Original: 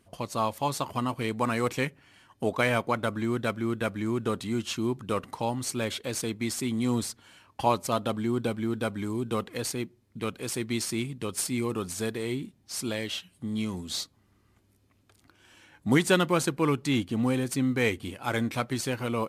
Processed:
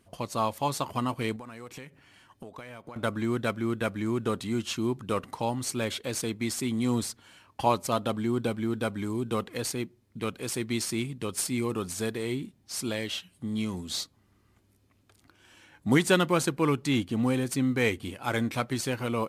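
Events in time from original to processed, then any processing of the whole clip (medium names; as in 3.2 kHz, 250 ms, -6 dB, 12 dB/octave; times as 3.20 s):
1.36–2.96 s: compression 12:1, threshold -39 dBFS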